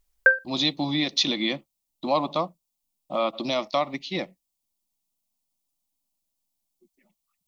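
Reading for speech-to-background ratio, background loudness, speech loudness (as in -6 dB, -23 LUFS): -4.5 dB, -22.0 LUFS, -26.5 LUFS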